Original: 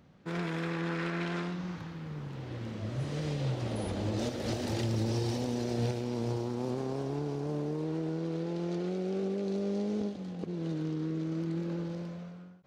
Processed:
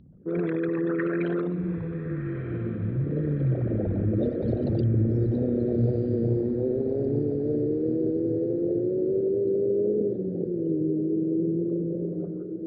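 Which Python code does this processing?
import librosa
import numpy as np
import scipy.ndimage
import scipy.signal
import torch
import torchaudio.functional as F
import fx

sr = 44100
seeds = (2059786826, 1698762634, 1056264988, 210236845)

y = fx.envelope_sharpen(x, sr, power=3.0)
y = fx.high_shelf_res(y, sr, hz=5300.0, db=-12.0, q=3.0)
y = fx.echo_diffused(y, sr, ms=1296, feedback_pct=58, wet_db=-9.5)
y = F.gain(torch.from_numpy(y), 7.5).numpy()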